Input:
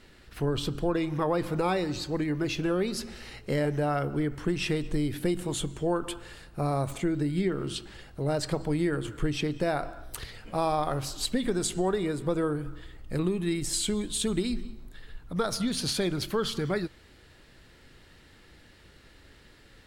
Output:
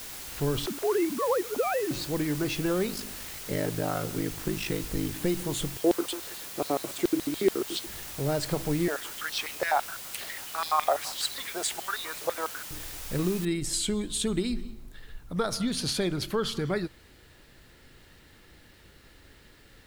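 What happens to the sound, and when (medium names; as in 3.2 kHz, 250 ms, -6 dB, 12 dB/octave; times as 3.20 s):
0.66–1.91 s: formants replaced by sine waves
2.87–5.21 s: ring modulator 26 Hz
5.77–7.87 s: LFO high-pass square 7 Hz 330–3800 Hz
8.88–12.71 s: step-sequenced high-pass 12 Hz 650–4000 Hz
13.45 s: noise floor step -41 dB -67 dB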